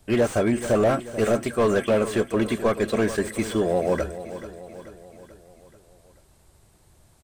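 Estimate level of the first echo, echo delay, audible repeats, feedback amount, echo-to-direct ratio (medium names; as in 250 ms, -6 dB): -13.0 dB, 435 ms, 4, 53%, -11.5 dB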